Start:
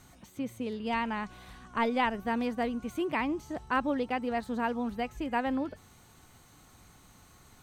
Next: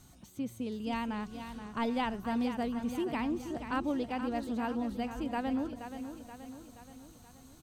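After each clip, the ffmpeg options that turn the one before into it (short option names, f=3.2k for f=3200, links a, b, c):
-filter_complex "[0:a]equalizer=f=500:t=o:w=1:g=-4,equalizer=f=1k:t=o:w=1:g=-4,equalizer=f=2k:t=o:w=1:g=-8,asplit=2[a][b];[b]aecho=0:1:477|954|1431|1908|2385|2862:0.335|0.181|0.0977|0.0527|0.0285|0.0154[c];[a][c]amix=inputs=2:normalize=0"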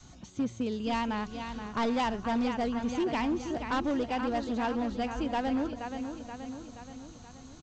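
-af "adynamicequalizer=threshold=0.00447:dfrequency=180:dqfactor=0.89:tfrequency=180:tqfactor=0.89:attack=5:release=100:ratio=0.375:range=2.5:mode=cutabove:tftype=bell,aresample=16000,asoftclip=type=hard:threshold=-31dB,aresample=44100,volume=6.5dB"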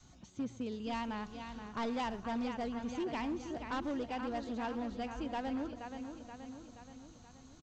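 -filter_complex "[0:a]asplit=2[a][b];[b]adelay=110,highpass=300,lowpass=3.4k,asoftclip=type=hard:threshold=-32dB,volume=-16dB[c];[a][c]amix=inputs=2:normalize=0,volume=-7.5dB"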